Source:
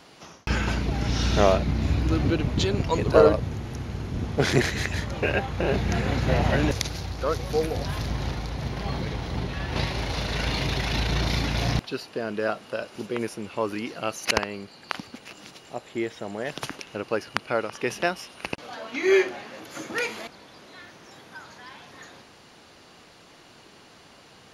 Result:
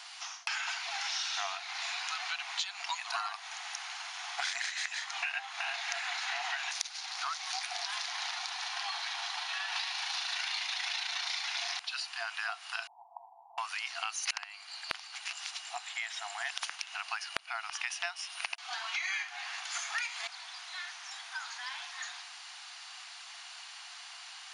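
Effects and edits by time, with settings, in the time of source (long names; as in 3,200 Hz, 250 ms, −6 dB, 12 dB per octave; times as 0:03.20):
0:08.37–0:10.39: notch filter 2,100 Hz, Q 13
0:12.87–0:13.58: Butterworth low-pass 950 Hz 96 dB per octave
whole clip: brick-wall band-pass 670–10,000 Hz; tilt shelving filter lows −8.5 dB, about 930 Hz; downward compressor 6 to 1, threshold −33 dBFS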